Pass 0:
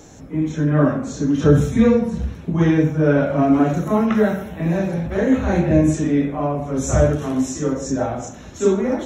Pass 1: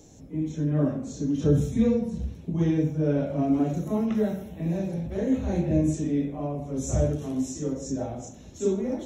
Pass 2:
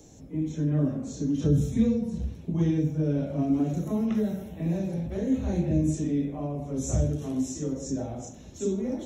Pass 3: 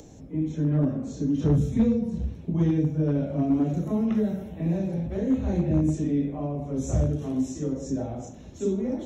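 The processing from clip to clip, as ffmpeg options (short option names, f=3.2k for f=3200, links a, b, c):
-af "equalizer=f=1.4k:w=0.94:g=-13,volume=-7dB"
-filter_complex "[0:a]acrossover=split=350|3000[a][b][c];[b]acompressor=threshold=-35dB:ratio=6[d];[a][d][c]amix=inputs=3:normalize=0"
-af "aeval=exprs='clip(val(0),-1,0.119)':c=same,acompressor=mode=upward:threshold=-44dB:ratio=2.5,highshelf=f=4.6k:g=-10,volume=2dB"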